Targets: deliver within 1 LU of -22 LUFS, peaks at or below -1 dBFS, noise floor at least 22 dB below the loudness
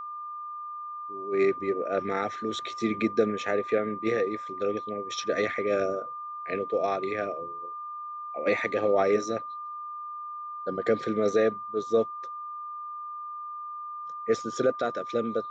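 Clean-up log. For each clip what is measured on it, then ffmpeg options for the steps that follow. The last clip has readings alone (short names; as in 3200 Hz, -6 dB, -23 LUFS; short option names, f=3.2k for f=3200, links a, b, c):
steady tone 1200 Hz; tone level -35 dBFS; loudness -29.5 LUFS; peak -12.0 dBFS; loudness target -22.0 LUFS
-> -af "bandreject=f=1.2k:w=30"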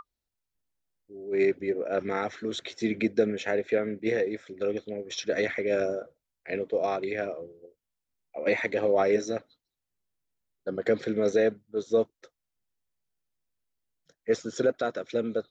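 steady tone none; loudness -29.0 LUFS; peak -12.0 dBFS; loudness target -22.0 LUFS
-> -af "volume=7dB"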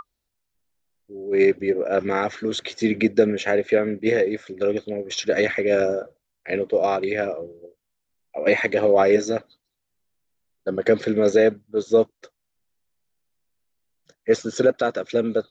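loudness -22.0 LUFS; peak -5.0 dBFS; noise floor -79 dBFS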